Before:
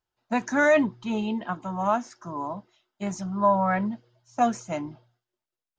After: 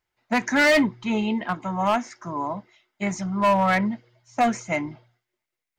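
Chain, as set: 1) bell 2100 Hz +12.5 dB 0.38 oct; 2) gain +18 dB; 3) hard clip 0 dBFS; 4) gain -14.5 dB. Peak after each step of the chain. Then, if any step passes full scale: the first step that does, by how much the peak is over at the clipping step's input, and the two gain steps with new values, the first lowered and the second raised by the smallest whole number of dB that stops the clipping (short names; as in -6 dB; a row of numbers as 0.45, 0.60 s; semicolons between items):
-8.5, +9.5, 0.0, -14.5 dBFS; step 2, 9.5 dB; step 2 +8 dB, step 4 -4.5 dB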